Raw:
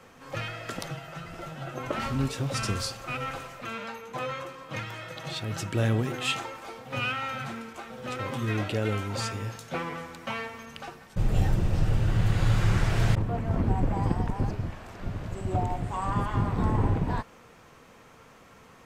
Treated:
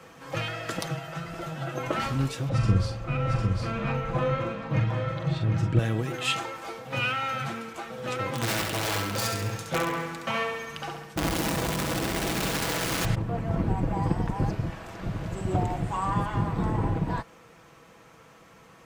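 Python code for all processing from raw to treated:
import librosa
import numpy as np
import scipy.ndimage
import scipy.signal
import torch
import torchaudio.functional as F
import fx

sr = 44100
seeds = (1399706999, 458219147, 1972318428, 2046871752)

y = fx.chain(x, sr, fx.riaa(side='playback'),
    fx.doubler(ms=43.0, db=-6.0),
    fx.echo_single(ms=752, db=-5.5), at=(2.49, 5.79))
y = fx.chain(y, sr, fx.overflow_wrap(gain_db=22.5),
    fx.echo_feedback(ms=68, feedback_pct=52, wet_db=-5.0), at=(8.32, 13.05))
y = scipy.signal.sosfilt(scipy.signal.butter(2, 40.0, 'highpass', fs=sr, output='sos'), y)
y = y + 0.37 * np.pad(y, (int(6.1 * sr / 1000.0), 0))[:len(y)]
y = fx.rider(y, sr, range_db=3, speed_s=0.5)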